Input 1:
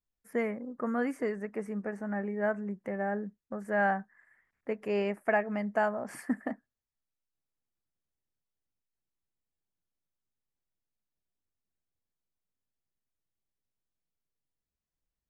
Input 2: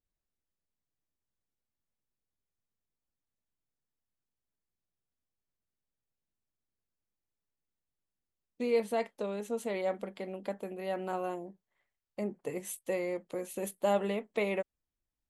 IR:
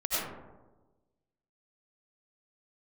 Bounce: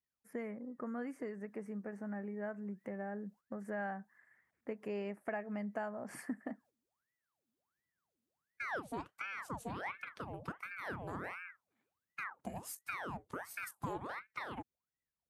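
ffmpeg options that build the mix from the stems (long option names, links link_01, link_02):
-filter_complex "[0:a]dynaudnorm=framelen=550:gausssize=13:maxgain=4dB,volume=-7dB,asplit=2[link_01][link_02];[1:a]dynaudnorm=framelen=140:gausssize=17:maxgain=11dB,equalizer=frequency=2300:width_type=o:width=1.3:gain=-5,aeval=exprs='val(0)*sin(2*PI*1100*n/s+1100*0.8/1.4*sin(2*PI*1.4*n/s))':channel_layout=same,volume=-0.5dB[link_03];[link_02]apad=whole_len=674727[link_04];[link_03][link_04]sidechaingate=range=-11dB:threshold=-59dB:ratio=16:detection=peak[link_05];[link_01][link_05]amix=inputs=2:normalize=0,highpass=98,lowshelf=frequency=240:gain=6,acompressor=threshold=-41dB:ratio=2.5"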